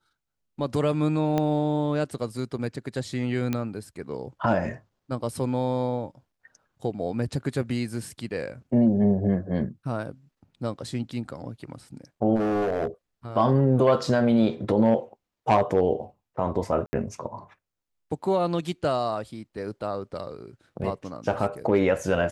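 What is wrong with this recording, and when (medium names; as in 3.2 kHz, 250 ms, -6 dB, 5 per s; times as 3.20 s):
1.38 s: pop -13 dBFS
3.53 s: pop -14 dBFS
12.35–12.87 s: clipped -21.5 dBFS
16.86–16.93 s: dropout 70 ms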